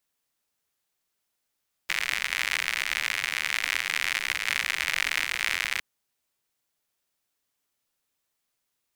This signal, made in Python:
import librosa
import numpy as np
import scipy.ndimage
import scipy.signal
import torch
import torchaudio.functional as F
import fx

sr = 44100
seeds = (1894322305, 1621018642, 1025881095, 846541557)

y = fx.rain(sr, seeds[0], length_s=3.91, drops_per_s=93.0, hz=2100.0, bed_db=-23.5)